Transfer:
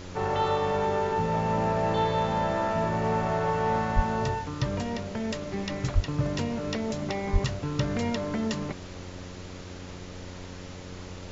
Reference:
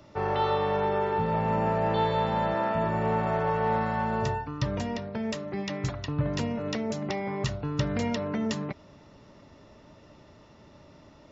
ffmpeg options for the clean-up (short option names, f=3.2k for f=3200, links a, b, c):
-filter_complex "[0:a]bandreject=f=90.7:t=h:w=4,bandreject=f=181.4:t=h:w=4,bandreject=f=272.1:t=h:w=4,bandreject=f=362.8:t=h:w=4,bandreject=f=453.5:t=h:w=4,bandreject=f=544.2:t=h:w=4,asplit=3[a][b][c];[a]afade=t=out:st=3.95:d=0.02[d];[b]highpass=f=140:w=0.5412,highpass=f=140:w=1.3066,afade=t=in:st=3.95:d=0.02,afade=t=out:st=4.07:d=0.02[e];[c]afade=t=in:st=4.07:d=0.02[f];[d][e][f]amix=inputs=3:normalize=0,asplit=3[g][h][i];[g]afade=t=out:st=5.94:d=0.02[j];[h]highpass=f=140:w=0.5412,highpass=f=140:w=1.3066,afade=t=in:st=5.94:d=0.02,afade=t=out:st=6.06:d=0.02[k];[i]afade=t=in:st=6.06:d=0.02[l];[j][k][l]amix=inputs=3:normalize=0,asplit=3[m][n][o];[m]afade=t=out:st=7.32:d=0.02[p];[n]highpass=f=140:w=0.5412,highpass=f=140:w=1.3066,afade=t=in:st=7.32:d=0.02,afade=t=out:st=7.44:d=0.02[q];[o]afade=t=in:st=7.44:d=0.02[r];[p][q][r]amix=inputs=3:normalize=0,afftdn=nr=13:nf=-41"